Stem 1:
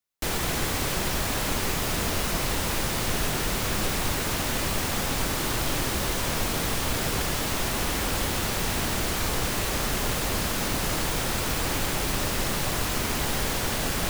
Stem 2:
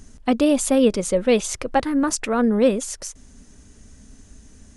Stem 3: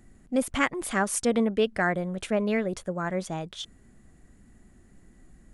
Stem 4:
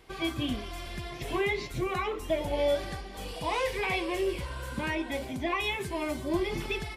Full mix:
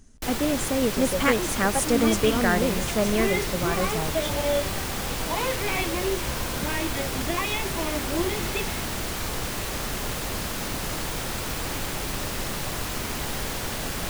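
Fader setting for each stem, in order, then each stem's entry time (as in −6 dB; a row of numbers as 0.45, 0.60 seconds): −3.0, −8.0, +1.5, +1.5 decibels; 0.00, 0.00, 0.65, 1.85 seconds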